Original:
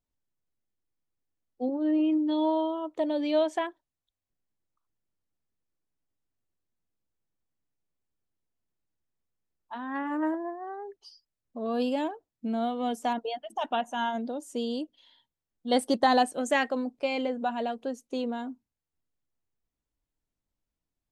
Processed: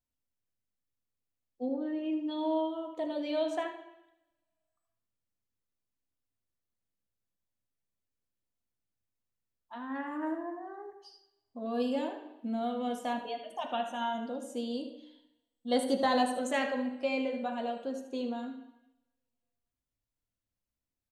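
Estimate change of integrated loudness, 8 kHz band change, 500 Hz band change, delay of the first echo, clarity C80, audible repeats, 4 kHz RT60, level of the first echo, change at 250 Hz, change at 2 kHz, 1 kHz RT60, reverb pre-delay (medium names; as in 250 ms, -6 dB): -4.5 dB, -3.5 dB, -4.0 dB, 76 ms, 9.0 dB, 1, 0.90 s, -12.0 dB, -5.0 dB, -4.5 dB, 0.85 s, 3 ms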